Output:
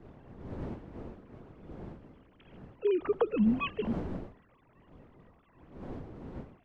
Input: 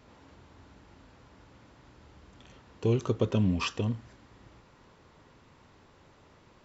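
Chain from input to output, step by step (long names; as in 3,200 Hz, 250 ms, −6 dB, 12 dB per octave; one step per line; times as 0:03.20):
three sine waves on the formant tracks
wind on the microphone 320 Hz −43 dBFS
level −1.5 dB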